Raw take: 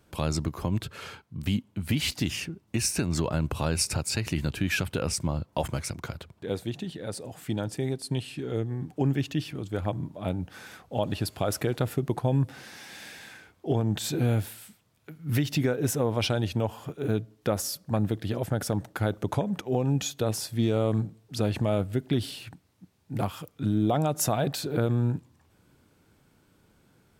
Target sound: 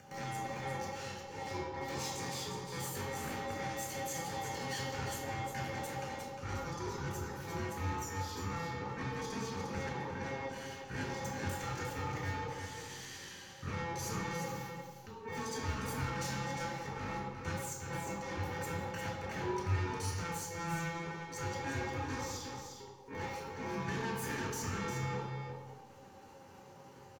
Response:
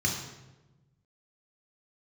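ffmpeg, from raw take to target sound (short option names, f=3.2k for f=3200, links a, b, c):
-filter_complex "[0:a]lowpass=12k,equalizer=f=82:w=2.3:g=14.5,bandreject=f=50:t=h:w=6,bandreject=f=100:t=h:w=6,bandreject=f=150:t=h:w=6,bandreject=f=200:t=h:w=6,bandreject=f=250:t=h:w=6,bandreject=f=300:t=h:w=6,bandreject=f=350:t=h:w=6,bandreject=f=400:t=h:w=6,acrossover=split=450|1900[a][b][c];[a]alimiter=limit=-22.5dB:level=0:latency=1:release=53[d];[d][b][c]amix=inputs=3:normalize=0,acompressor=mode=upward:threshold=-42dB:ratio=2.5,aeval=exprs='val(0)*sin(2*PI*450*n/s)':c=same,aeval=exprs='(tanh(63.1*val(0)+0.25)-tanh(0.25))/63.1':c=same,asetrate=66075,aresample=44100,atempo=0.66742,aecho=1:1:354:0.447[e];[1:a]atrim=start_sample=2205[f];[e][f]afir=irnorm=-1:irlink=0,volume=-8.5dB"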